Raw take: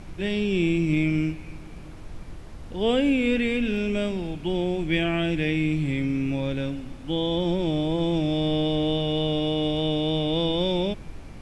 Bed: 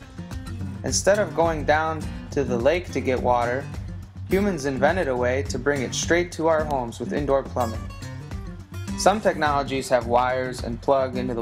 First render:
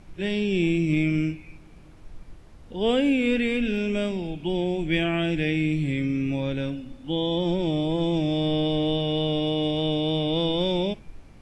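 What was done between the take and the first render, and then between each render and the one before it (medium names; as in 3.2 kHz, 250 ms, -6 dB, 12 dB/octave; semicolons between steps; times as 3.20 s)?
noise print and reduce 8 dB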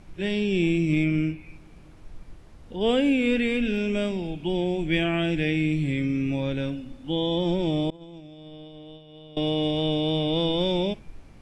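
1.04–2.81 s: dynamic bell 6.5 kHz, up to -7 dB, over -57 dBFS, Q 1; 7.90–9.37 s: expander -12 dBFS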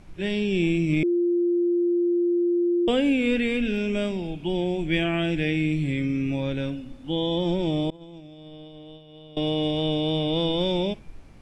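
1.03–2.88 s: bleep 348 Hz -19 dBFS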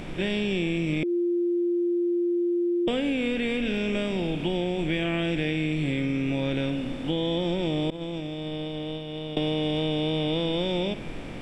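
spectral levelling over time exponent 0.6; compression, threshold -23 dBFS, peak gain reduction 7.5 dB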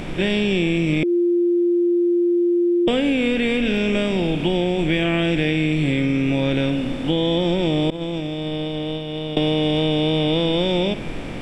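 trim +7 dB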